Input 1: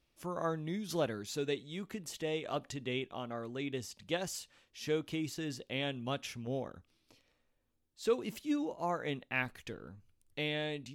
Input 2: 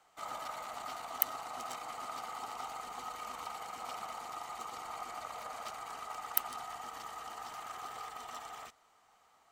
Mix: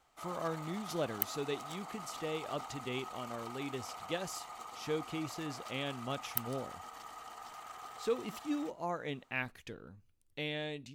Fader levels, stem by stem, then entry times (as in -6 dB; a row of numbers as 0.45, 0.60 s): -2.5, -4.0 dB; 0.00, 0.00 s